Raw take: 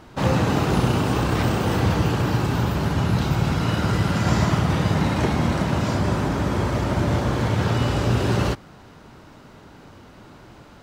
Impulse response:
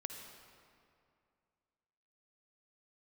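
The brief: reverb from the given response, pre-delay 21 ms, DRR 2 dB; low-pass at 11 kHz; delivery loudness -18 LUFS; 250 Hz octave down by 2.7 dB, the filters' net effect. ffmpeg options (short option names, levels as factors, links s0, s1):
-filter_complex "[0:a]lowpass=11000,equalizer=f=250:t=o:g=-4,asplit=2[s0][s1];[1:a]atrim=start_sample=2205,adelay=21[s2];[s1][s2]afir=irnorm=-1:irlink=0,volume=1[s3];[s0][s3]amix=inputs=2:normalize=0,volume=1.41"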